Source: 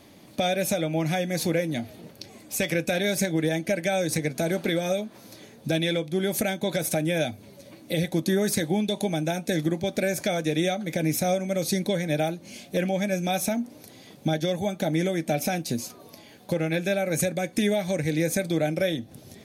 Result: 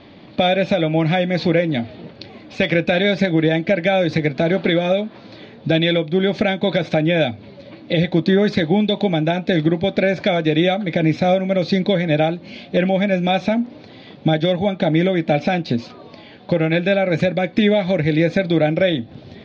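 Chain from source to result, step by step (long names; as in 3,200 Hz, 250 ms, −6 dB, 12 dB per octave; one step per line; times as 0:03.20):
Butterworth low-pass 4,200 Hz 36 dB per octave
level +8.5 dB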